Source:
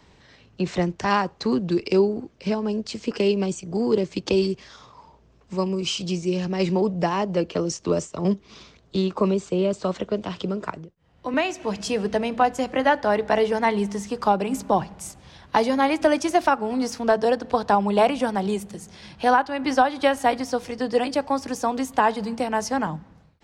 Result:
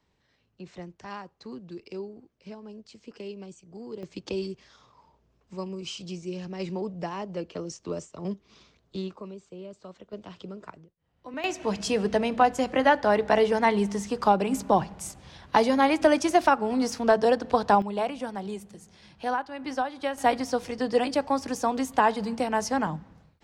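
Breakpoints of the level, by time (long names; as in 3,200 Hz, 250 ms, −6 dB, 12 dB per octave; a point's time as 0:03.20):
−18 dB
from 0:04.03 −10.5 dB
from 0:09.16 −19.5 dB
from 0:10.13 −13 dB
from 0:11.44 −1 dB
from 0:17.82 −10 dB
from 0:20.18 −2 dB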